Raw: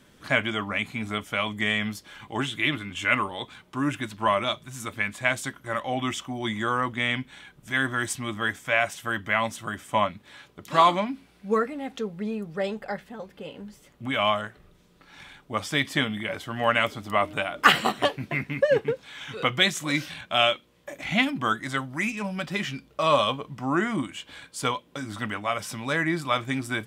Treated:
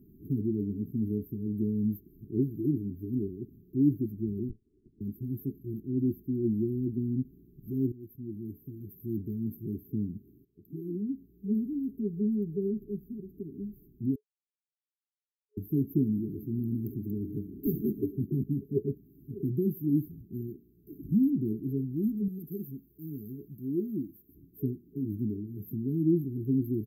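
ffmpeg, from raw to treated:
ffmpeg -i in.wav -filter_complex "[0:a]asettb=1/sr,asplit=3[link_01][link_02][link_03];[link_01]atrim=end=4.494[link_04];[link_02]atrim=start=4.49:end=5.01,asetpts=PTS-STARTPTS,afade=type=in:duration=0.004:curve=qsin,afade=type=out:start_time=0.516:duration=0.004:curve=qsin,lowpass=frequency=2900:width_type=q:width=0.5098,lowpass=frequency=2900:width_type=q:width=0.6013,lowpass=frequency=2900:width_type=q:width=0.9,lowpass=frequency=2900:width_type=q:width=2.563,afreqshift=-3400[link_05];[link_03]atrim=start=5.006[link_06];[link_04][link_05]acrossfade=duration=0.004:curve1=hsin:curve2=qsin[link_07];[link_07][link_06]acrossfade=duration=0.004:curve1=qsin:curve2=hsin,asplit=3[link_08][link_09][link_10];[link_08]afade=type=out:start_time=16.16:duration=0.02[link_11];[link_09]asplit=2[link_12][link_13];[link_13]adelay=154,lowpass=frequency=2000:poles=1,volume=-15.5dB,asplit=2[link_14][link_15];[link_15]adelay=154,lowpass=frequency=2000:poles=1,volume=0.55,asplit=2[link_16][link_17];[link_17]adelay=154,lowpass=frequency=2000:poles=1,volume=0.55,asplit=2[link_18][link_19];[link_19]adelay=154,lowpass=frequency=2000:poles=1,volume=0.55,asplit=2[link_20][link_21];[link_21]adelay=154,lowpass=frequency=2000:poles=1,volume=0.55[link_22];[link_12][link_14][link_16][link_18][link_20][link_22]amix=inputs=6:normalize=0,afade=type=in:start_time=16.16:duration=0.02,afade=type=out:start_time=18.33:duration=0.02[link_23];[link_10]afade=type=in:start_time=18.33:duration=0.02[link_24];[link_11][link_23][link_24]amix=inputs=3:normalize=0,asettb=1/sr,asplit=3[link_25][link_26][link_27];[link_25]atrim=end=22.284[link_28];[link_26]atrim=start=22.28:end=24.35,asetpts=PTS-STARTPTS,afade=type=in:duration=0.004:curve=qsin,afade=type=out:start_time=2.066:duration=0.004:curve=qsin,tiltshelf=frequency=970:gain=-9.5[link_29];[link_27]atrim=start=24.346[link_30];[link_28][link_29]acrossfade=duration=0.004:curve1=hsin:curve2=qsin[link_31];[link_31][link_30]acrossfade=duration=0.004:curve1=qsin:curve2=hsin,asplit=5[link_32][link_33][link_34][link_35][link_36];[link_32]atrim=end=7.92,asetpts=PTS-STARTPTS,afade=type=out:start_time=7.916:duration=0.004:curve=hsin:silence=0.112202[link_37];[link_33]atrim=start=7.92:end=10.45,asetpts=PTS-STARTPTS,afade=type=in:duration=1.22:silence=0.112202,afade=type=out:start_time=2.526:duration=0.004:curve=hsin:silence=0.105925[link_38];[link_34]atrim=start=10.45:end=14.16,asetpts=PTS-STARTPTS,afade=type=in:duration=1.11:silence=0.105925,afade=type=out:start_time=3.706:duration=0.004:curve=hsin[link_39];[link_35]atrim=start=14.16:end=15.57,asetpts=PTS-STARTPTS,volume=0[link_40];[link_36]atrim=start=15.57,asetpts=PTS-STARTPTS,afade=type=in:duration=0.004:curve=hsin[link_41];[link_37][link_38][link_39][link_40][link_41]concat=n=5:v=0:a=1,afftfilt=real='re*(1-between(b*sr/4096,430,12000))':imag='im*(1-between(b*sr/4096,430,12000))':win_size=4096:overlap=0.75,volume=3dB" out.wav

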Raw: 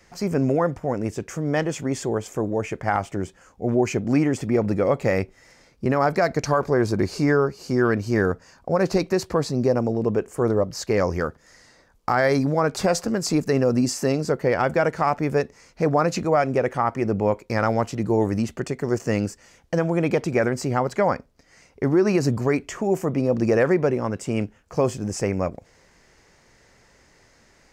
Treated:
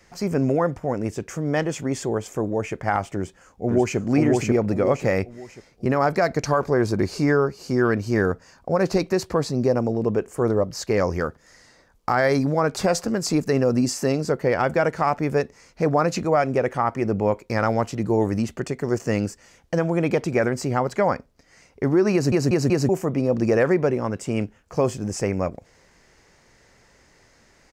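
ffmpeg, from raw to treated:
ffmpeg -i in.wav -filter_complex "[0:a]asplit=2[link_01][link_02];[link_02]afade=type=in:start_time=3.16:duration=0.01,afade=type=out:start_time=3.98:duration=0.01,aecho=0:1:540|1080|1620|2160|2700:0.841395|0.294488|0.103071|0.0360748|0.0126262[link_03];[link_01][link_03]amix=inputs=2:normalize=0,asplit=5[link_04][link_05][link_06][link_07][link_08];[link_04]atrim=end=22.322[link_09];[link_05]atrim=start=22.128:end=22.322[link_10];[link_06]atrim=start=22.128:end=22.322[link_11];[link_07]atrim=start=22.128:end=22.322[link_12];[link_08]atrim=start=22.888[link_13];[link_09][link_10]acrossfade=duration=0.004:curve1=hsin:curve2=hsin[link_14];[link_14][link_11]acrossfade=duration=0.004:curve1=hsin:curve2=hsin[link_15];[link_15][link_12]acrossfade=duration=0.004:curve1=hsin:curve2=hsin[link_16];[link_16][link_13]acrossfade=duration=0.004:curve1=hsin:curve2=hsin" out.wav

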